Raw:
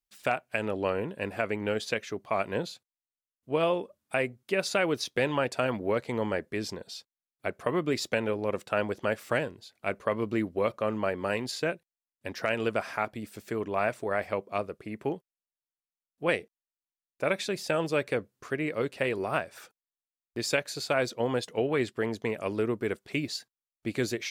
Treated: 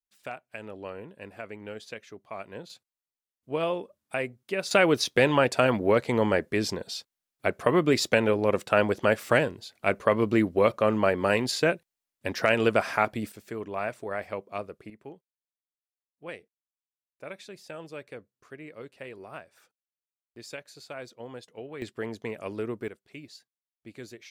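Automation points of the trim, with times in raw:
-10 dB
from 2.70 s -2 dB
from 4.71 s +6 dB
from 13.32 s -3.5 dB
from 14.90 s -13 dB
from 21.82 s -4 dB
from 22.88 s -13.5 dB

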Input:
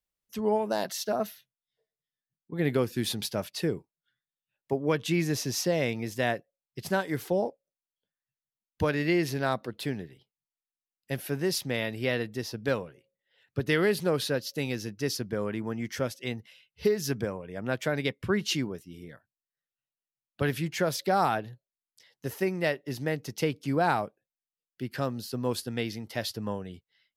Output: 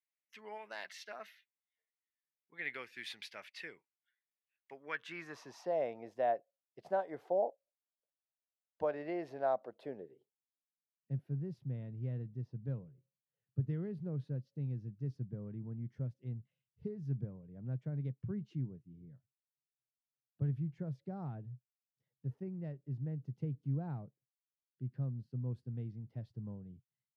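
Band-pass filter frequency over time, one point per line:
band-pass filter, Q 3.4
4.78 s 2.1 kHz
5.81 s 670 Hz
9.75 s 670 Hz
11.24 s 130 Hz

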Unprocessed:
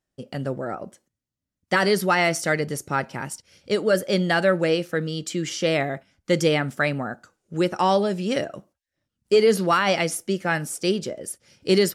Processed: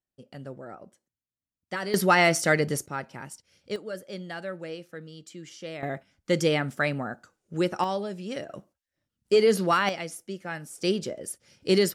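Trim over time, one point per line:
-12 dB
from 1.94 s +0.5 dB
from 2.86 s -9 dB
from 3.76 s -16 dB
from 5.83 s -3.5 dB
from 7.84 s -10 dB
from 8.49 s -3 dB
from 9.89 s -11.5 dB
from 10.78 s -3 dB

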